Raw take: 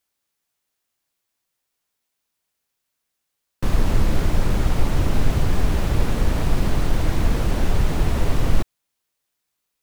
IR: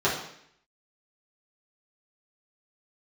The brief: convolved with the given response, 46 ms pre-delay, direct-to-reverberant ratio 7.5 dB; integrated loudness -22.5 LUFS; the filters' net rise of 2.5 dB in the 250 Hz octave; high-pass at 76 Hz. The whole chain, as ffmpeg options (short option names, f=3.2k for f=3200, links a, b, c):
-filter_complex "[0:a]highpass=76,equalizer=f=250:t=o:g=3.5,asplit=2[a][b];[1:a]atrim=start_sample=2205,adelay=46[c];[b][c]afir=irnorm=-1:irlink=0,volume=-22.5dB[d];[a][d]amix=inputs=2:normalize=0,volume=1.5dB"